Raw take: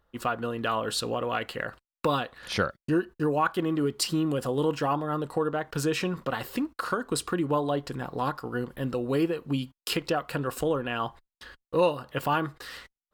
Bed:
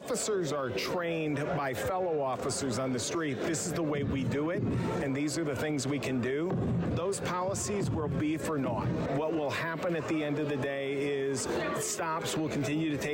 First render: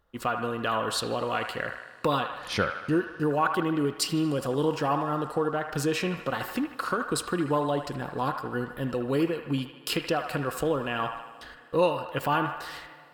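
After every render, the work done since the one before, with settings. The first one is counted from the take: on a send: band-limited delay 77 ms, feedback 60%, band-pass 1400 Hz, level -6 dB; on the sum: Schroeder reverb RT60 3.8 s, combs from 32 ms, DRR 20 dB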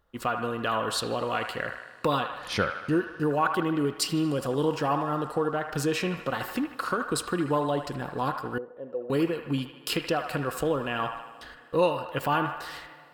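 8.58–9.1 band-pass 510 Hz, Q 3.4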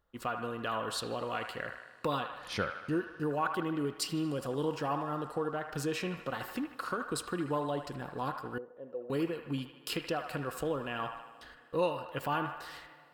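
gain -7 dB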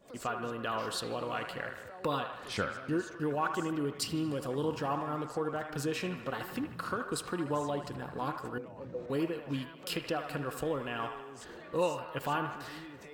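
add bed -17.5 dB

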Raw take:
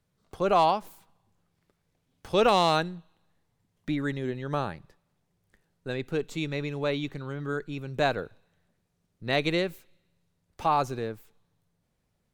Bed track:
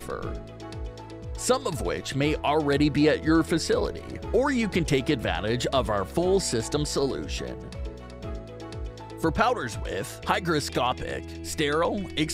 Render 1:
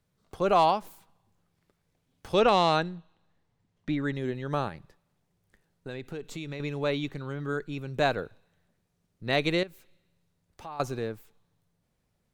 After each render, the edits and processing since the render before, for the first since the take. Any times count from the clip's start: 2.39–4.15 air absorption 64 m; 4.68–6.6 compressor, threshold -33 dBFS; 9.63–10.8 compressor 2:1, threshold -51 dBFS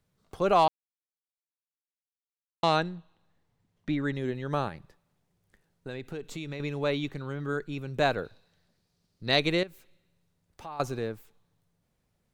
0.68–2.63 mute; 8.24–9.4 bell 4600 Hz +12 dB 0.66 oct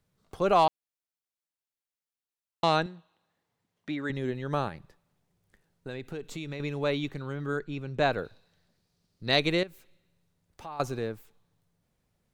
2.86–4.1 HPF 370 Hz 6 dB/oct; 7.59–8.13 air absorption 62 m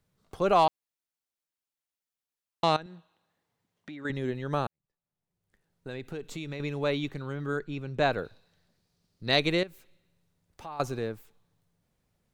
2.76–4.05 compressor 4:1, threshold -40 dBFS; 4.67–5.94 fade in quadratic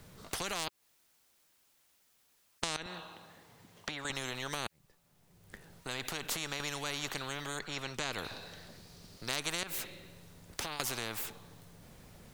compressor, threshold -28 dBFS, peak gain reduction 10.5 dB; spectral compressor 4:1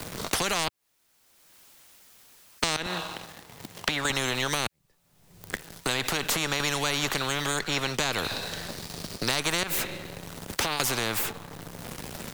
sample leveller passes 3; three-band squash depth 70%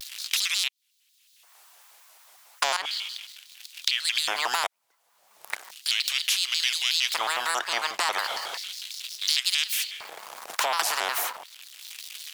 LFO high-pass square 0.35 Hz 870–3300 Hz; shaped vibrato square 5.5 Hz, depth 250 cents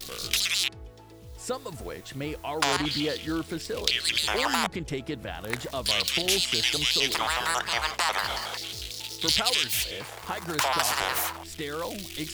add bed track -9 dB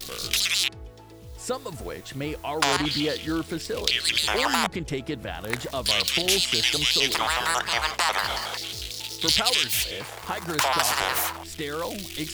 gain +2.5 dB; limiter -3 dBFS, peak gain reduction 1.5 dB

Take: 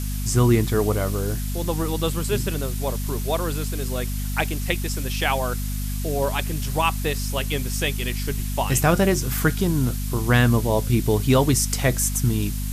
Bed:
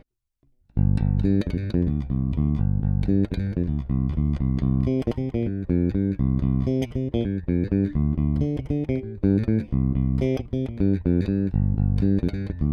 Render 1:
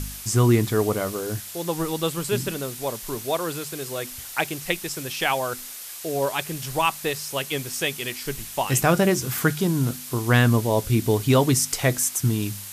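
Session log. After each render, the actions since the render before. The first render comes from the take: de-hum 50 Hz, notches 5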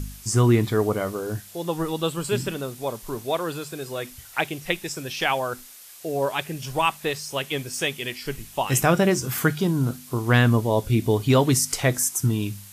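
noise print and reduce 8 dB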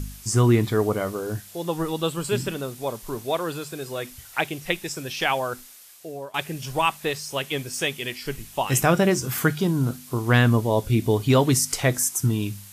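5.34–6.34 fade out equal-power, to -19.5 dB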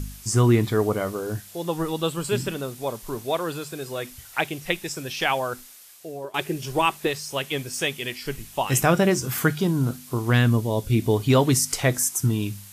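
6.24–7.07 bell 370 Hz +11.5 dB 0.45 oct; 10.3–10.91 bell 880 Hz -5.5 dB 2.3 oct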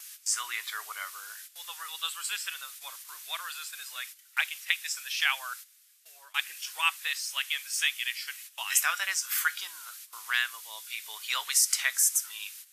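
gate -38 dBFS, range -13 dB; HPF 1400 Hz 24 dB/oct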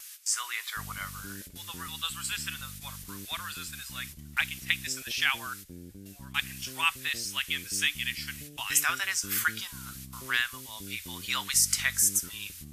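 add bed -24.5 dB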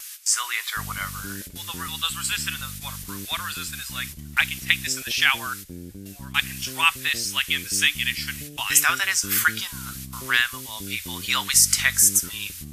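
gain +7.5 dB; limiter -1 dBFS, peak gain reduction 1 dB

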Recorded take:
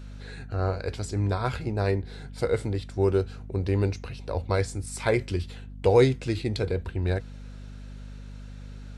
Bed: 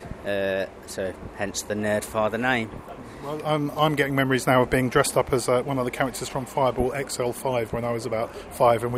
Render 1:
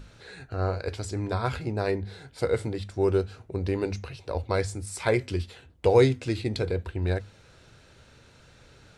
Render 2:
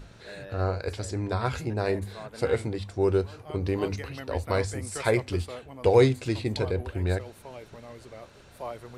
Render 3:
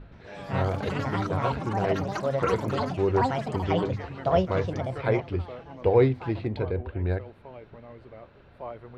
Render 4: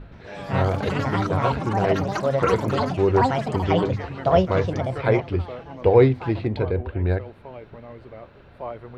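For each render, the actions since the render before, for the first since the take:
notches 50/100/150/200/250 Hz
add bed -18.5 dB
air absorption 410 m; echoes that change speed 0.121 s, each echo +6 st, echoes 3
gain +5 dB

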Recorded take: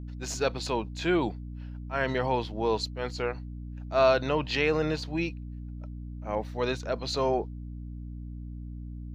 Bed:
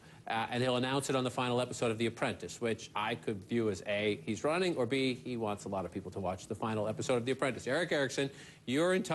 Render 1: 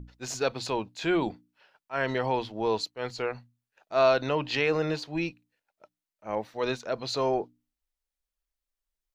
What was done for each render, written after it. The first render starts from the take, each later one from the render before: notches 60/120/180/240/300 Hz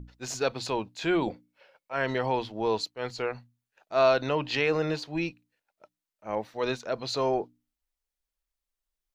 1.27–1.93 small resonant body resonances 530/2200 Hz, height 15 dB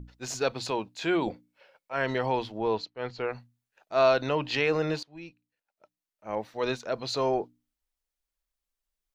0.71–1.25 HPF 140 Hz 6 dB/oct; 2.58–3.29 air absorption 180 m; 5.03–6.55 fade in, from -20 dB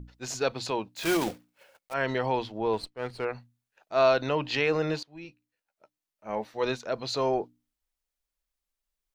0.96–1.95 block floating point 3-bit; 2.73–3.25 running maximum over 3 samples; 5.23–6.65 doubler 14 ms -8 dB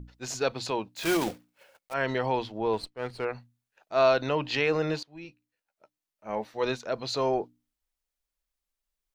nothing audible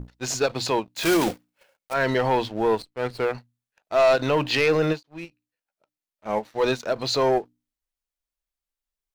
sample leveller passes 2; ending taper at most 400 dB/s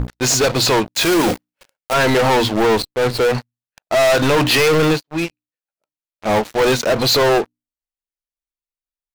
sample leveller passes 5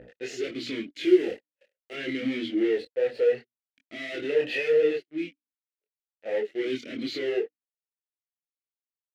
chorus voices 6, 0.82 Hz, delay 24 ms, depth 2.8 ms; vowel sweep e-i 0.65 Hz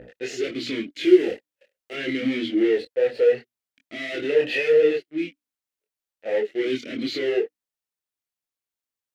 gain +4.5 dB

